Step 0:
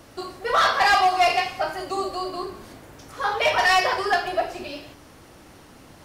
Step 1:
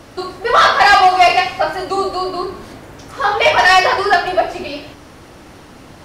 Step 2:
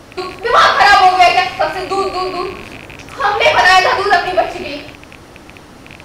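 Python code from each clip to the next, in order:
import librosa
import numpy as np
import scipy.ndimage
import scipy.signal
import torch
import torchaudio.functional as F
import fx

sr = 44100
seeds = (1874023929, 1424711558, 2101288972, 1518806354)

y1 = fx.high_shelf(x, sr, hz=9000.0, db=-9.0)
y1 = F.gain(torch.from_numpy(y1), 9.0).numpy()
y2 = fx.rattle_buzz(y1, sr, strikes_db=-37.0, level_db=-20.0)
y2 = F.gain(torch.from_numpy(y2), 1.5).numpy()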